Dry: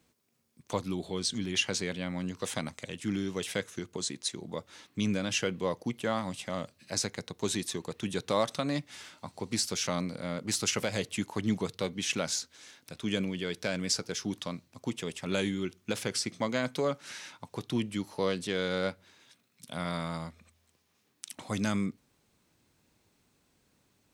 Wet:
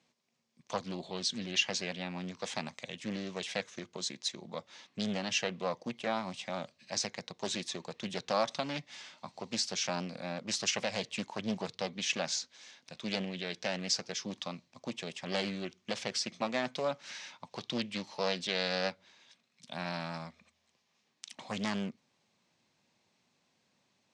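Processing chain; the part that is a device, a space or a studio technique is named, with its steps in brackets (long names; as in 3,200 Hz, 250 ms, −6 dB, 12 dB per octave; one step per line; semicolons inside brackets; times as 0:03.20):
0:17.51–0:18.90: parametric band 3,600 Hz +5 dB 1.9 octaves
full-range speaker at full volume (highs frequency-modulated by the lows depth 0.64 ms; loudspeaker in its box 200–6,600 Hz, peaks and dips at 300 Hz −9 dB, 430 Hz −7 dB, 1,400 Hz −6 dB)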